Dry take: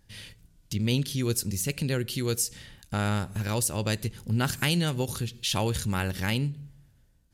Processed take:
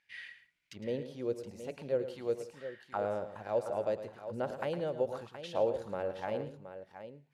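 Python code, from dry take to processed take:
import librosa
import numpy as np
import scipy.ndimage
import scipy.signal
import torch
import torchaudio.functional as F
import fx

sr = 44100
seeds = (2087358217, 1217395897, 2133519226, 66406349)

p1 = fx.auto_wah(x, sr, base_hz=550.0, top_hz=2300.0, q=5.1, full_db=-23.5, direction='down')
p2 = p1 + fx.echo_multitap(p1, sr, ms=(109, 170, 721), db=(-11.5, -19.5, -11.0), dry=0)
y = p2 * librosa.db_to_amplitude(6.5)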